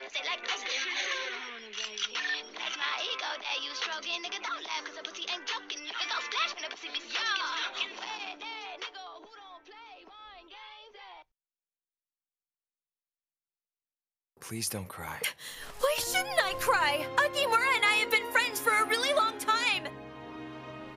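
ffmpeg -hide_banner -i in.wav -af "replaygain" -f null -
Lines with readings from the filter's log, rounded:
track_gain = +9.4 dB
track_peak = 0.166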